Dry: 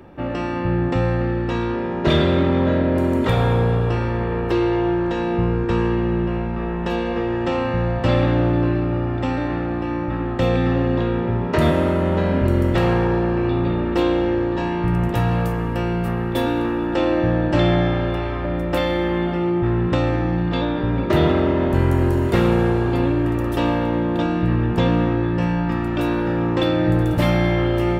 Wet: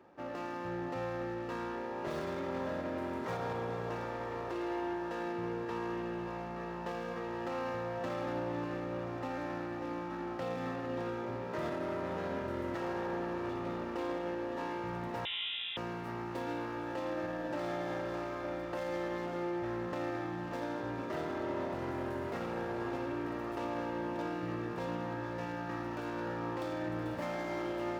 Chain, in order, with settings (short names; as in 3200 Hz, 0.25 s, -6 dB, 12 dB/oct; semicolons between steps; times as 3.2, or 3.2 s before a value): median filter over 15 samples; HPF 890 Hz 6 dB/oct; high shelf 2600 Hz -8 dB; limiter -21 dBFS, peak gain reduction 7 dB; diffused feedback echo 0.546 s, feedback 75%, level -10.5 dB; 15.25–15.77 inverted band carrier 3700 Hz; gain -7.5 dB